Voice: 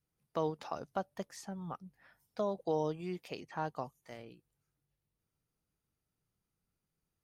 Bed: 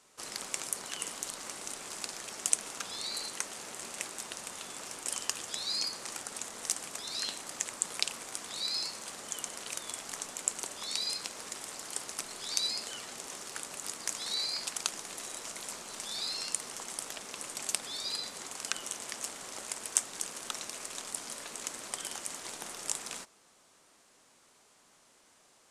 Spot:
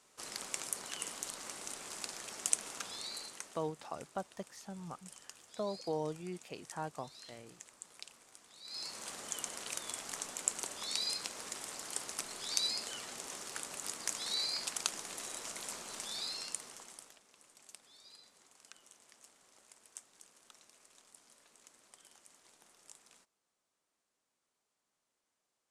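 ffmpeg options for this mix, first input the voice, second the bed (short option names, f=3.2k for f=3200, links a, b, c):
-filter_complex "[0:a]adelay=3200,volume=-3.5dB[a];[1:a]volume=13dB,afade=t=out:st=2.8:d=0.91:silence=0.177828,afade=t=in:st=8.64:d=0.41:silence=0.149624,afade=t=out:st=15.93:d=1.28:silence=0.1[b];[a][b]amix=inputs=2:normalize=0"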